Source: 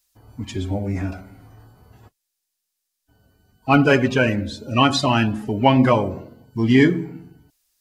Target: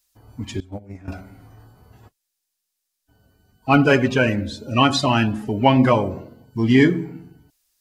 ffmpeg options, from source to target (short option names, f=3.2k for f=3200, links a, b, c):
-filter_complex "[0:a]asettb=1/sr,asplit=3[a][b][c];[a]atrim=end=0.604[d];[b]atrim=start=0.6:end=1.08,asetpts=PTS-STARTPTS,afade=t=in:d=0.004:c=qsin,afade=t=out:st=0.476:d=0.004:c=qsin,agate=range=-19dB:threshold=-20dB:ratio=16:detection=peak[e];[c]atrim=start=1.076[f];[d][e]acrossfade=d=0.004:c1=hsin:c2=qsin[g];[g][f]acrossfade=d=0.004:c1=qsin:c2=hsin"